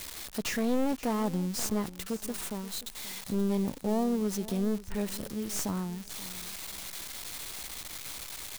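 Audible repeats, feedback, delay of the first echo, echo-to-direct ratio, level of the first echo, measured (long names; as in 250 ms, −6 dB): 2, 23%, 530 ms, −17.0 dB, −17.0 dB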